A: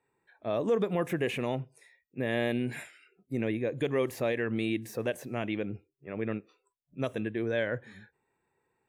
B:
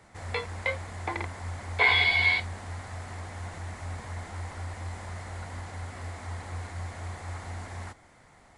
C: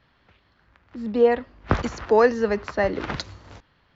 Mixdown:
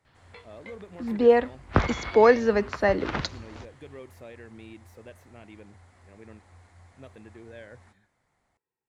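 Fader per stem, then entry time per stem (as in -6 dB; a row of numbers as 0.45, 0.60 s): -15.5, -17.0, 0.0 dB; 0.00, 0.00, 0.05 s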